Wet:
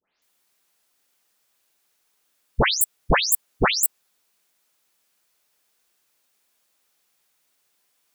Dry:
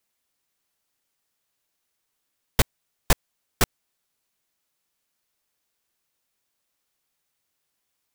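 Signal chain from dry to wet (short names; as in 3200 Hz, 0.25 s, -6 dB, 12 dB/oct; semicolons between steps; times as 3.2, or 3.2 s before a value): spectral delay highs late, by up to 0.223 s; low shelf 190 Hz -9 dB; gain +8.5 dB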